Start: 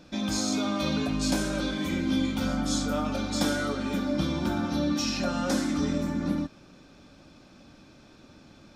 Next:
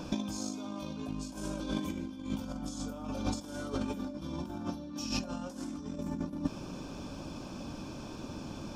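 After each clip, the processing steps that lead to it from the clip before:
thirty-one-band graphic EQ 1,000 Hz +10 dB, 2,000 Hz −10 dB, 4,000 Hz −8 dB
compressor whose output falls as the input rises −35 dBFS, ratio −0.5
dynamic equaliser 1,300 Hz, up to −7 dB, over −54 dBFS, Q 0.9
level +1.5 dB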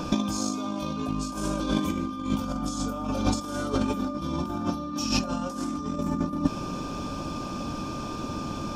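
steady tone 1,200 Hz −46 dBFS
level +8.5 dB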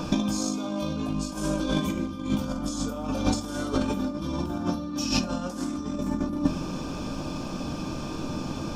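rectangular room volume 140 cubic metres, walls furnished, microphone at 0.59 metres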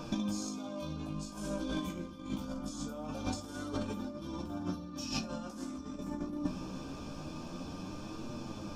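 flanger 0.24 Hz, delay 8.4 ms, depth 9 ms, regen +36%
level −6.5 dB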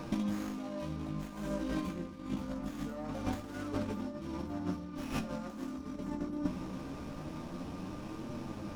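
windowed peak hold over 9 samples
level +1 dB

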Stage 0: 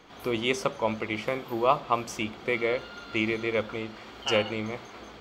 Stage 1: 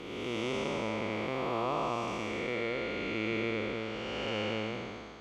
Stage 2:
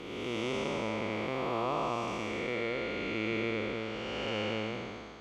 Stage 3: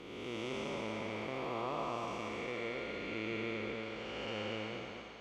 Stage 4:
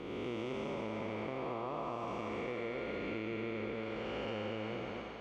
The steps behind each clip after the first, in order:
spectrum smeared in time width 542 ms; low-pass filter 8,800 Hz 12 dB per octave
no processing that can be heard
feedback echo with a high-pass in the loop 228 ms, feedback 55%, level −6.5 dB; level −6.5 dB
high-shelf EQ 2,600 Hz −11.5 dB; downward compressor, threshold −42 dBFS, peak gain reduction 7.5 dB; level +6.5 dB

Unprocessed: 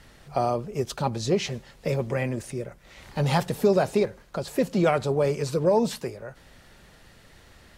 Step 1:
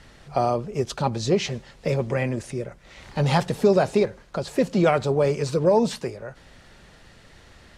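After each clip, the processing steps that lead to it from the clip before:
low-pass filter 8,600 Hz 12 dB per octave
level +2.5 dB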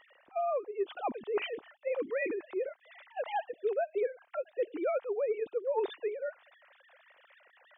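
three sine waves on the formant tracks
reversed playback
downward compressor 6 to 1, threshold −30 dBFS, peak gain reduction 18 dB
reversed playback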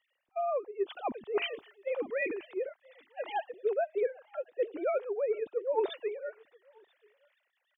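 single-tap delay 986 ms −18 dB
multiband upward and downward expander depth 70%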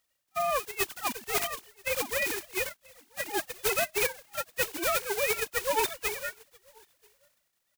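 spectral envelope flattened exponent 0.1
in parallel at −7 dB: wave folding −25.5 dBFS

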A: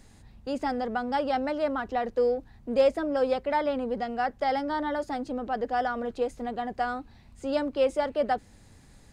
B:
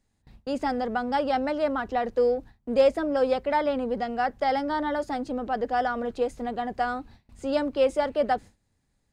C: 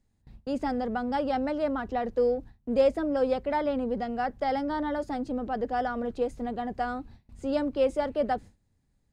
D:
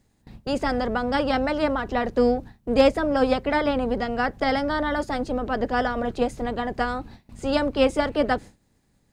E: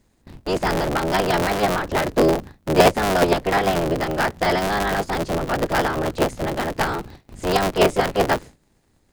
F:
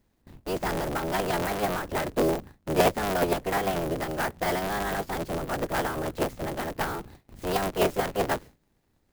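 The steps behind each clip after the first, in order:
noise gate with hold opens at −42 dBFS; level +2 dB
low-shelf EQ 400 Hz +8 dB; level −5.5 dB
ceiling on every frequency bin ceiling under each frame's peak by 12 dB; level +5.5 dB
sub-harmonics by changed cycles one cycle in 3, inverted; level +3 dB
converter with an unsteady clock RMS 0.031 ms; level −7.5 dB

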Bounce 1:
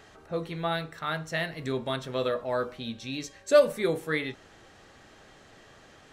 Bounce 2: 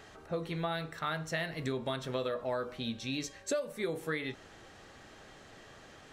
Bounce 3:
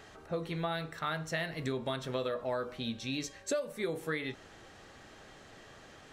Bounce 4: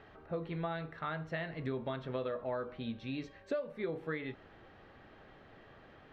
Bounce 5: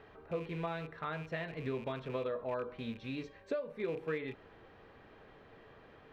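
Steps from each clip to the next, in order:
downward compressor 16 to 1, threshold −30 dBFS, peak gain reduction 17 dB
no processing that can be heard
high-frequency loss of the air 360 metres; level −1.5 dB
loose part that buzzes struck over −45 dBFS, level −42 dBFS; hollow resonant body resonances 450/1,000/2,400 Hz, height 7 dB; level −1.5 dB

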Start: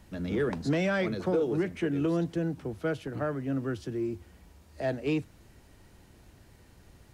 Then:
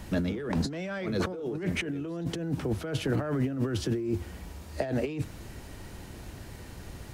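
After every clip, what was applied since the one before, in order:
compressor whose output falls as the input rises −37 dBFS, ratio −1
level +6 dB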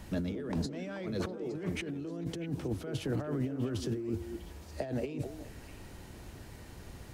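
echo through a band-pass that steps 216 ms, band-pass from 340 Hz, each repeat 1.4 octaves, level −5.5 dB
dynamic equaliser 1,600 Hz, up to −4 dB, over −48 dBFS, Q 0.73
level −5 dB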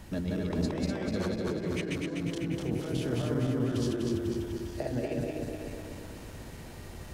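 feedback delay that plays each chunk backwards 124 ms, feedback 76%, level −1 dB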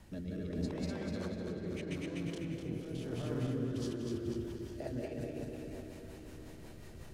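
rotating-speaker cabinet horn 0.8 Hz, later 5.5 Hz, at 0:03.33
comb and all-pass reverb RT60 4.1 s, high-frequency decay 0.5×, pre-delay 110 ms, DRR 7.5 dB
level −6.5 dB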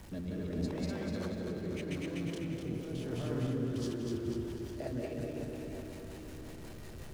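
converter with a step at zero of −51.5 dBFS
level +1 dB

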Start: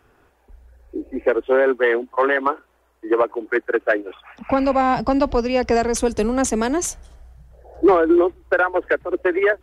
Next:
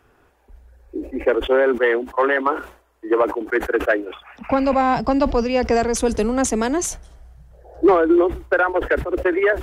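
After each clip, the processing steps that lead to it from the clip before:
level that may fall only so fast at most 130 dB per second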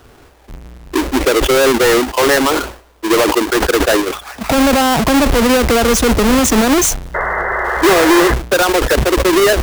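each half-wave held at its own peak
brickwall limiter −17 dBFS, peak gain reduction 10 dB
sound drawn into the spectrogram noise, 0:07.14–0:08.34, 350–2,100 Hz −27 dBFS
level +9 dB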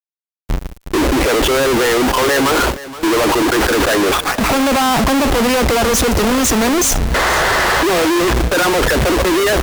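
fuzz pedal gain 37 dB, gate −34 dBFS
single-tap delay 473 ms −16 dB

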